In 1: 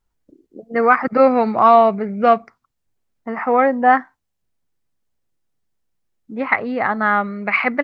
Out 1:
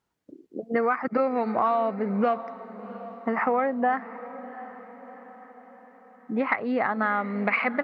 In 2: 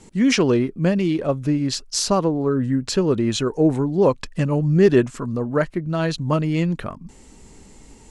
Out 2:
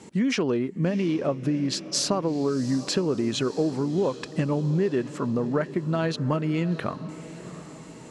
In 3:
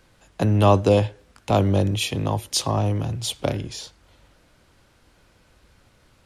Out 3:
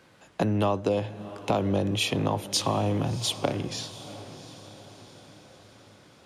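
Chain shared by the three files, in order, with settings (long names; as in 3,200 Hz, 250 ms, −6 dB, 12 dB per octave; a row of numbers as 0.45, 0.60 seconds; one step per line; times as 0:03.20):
high-pass filter 140 Hz 12 dB per octave
high-shelf EQ 5,400 Hz −7 dB
downward compressor 6 to 1, threshold −25 dBFS
on a send: feedback delay with all-pass diffusion 708 ms, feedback 52%, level −15 dB
on the sum: level +3 dB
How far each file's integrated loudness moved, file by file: −9.5, −5.5, −5.5 LU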